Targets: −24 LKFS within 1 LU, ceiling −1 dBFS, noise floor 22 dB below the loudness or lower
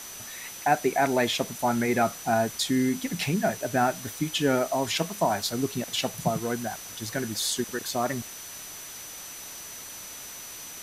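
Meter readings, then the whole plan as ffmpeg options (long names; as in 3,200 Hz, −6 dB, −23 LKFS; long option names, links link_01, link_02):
interfering tone 6,000 Hz; level of the tone −43 dBFS; background noise floor −41 dBFS; target noise floor −50 dBFS; integrated loudness −28.0 LKFS; sample peak −8.5 dBFS; target loudness −24.0 LKFS
→ -af "bandreject=frequency=6000:width=30"
-af "afftdn=noise_reduction=9:noise_floor=-41"
-af "volume=4dB"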